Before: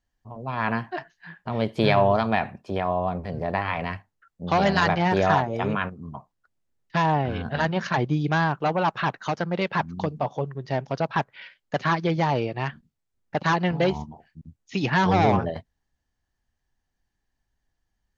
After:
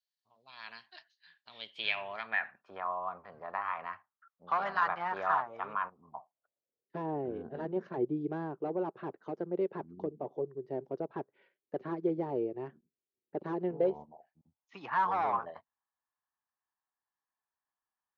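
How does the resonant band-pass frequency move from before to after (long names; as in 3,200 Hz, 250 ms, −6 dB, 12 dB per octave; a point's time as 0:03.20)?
resonant band-pass, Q 4.1
0:01.43 4,200 Hz
0:02.81 1,200 Hz
0:05.69 1,200 Hz
0:07.02 380 Hz
0:13.66 380 Hz
0:14.77 1,100 Hz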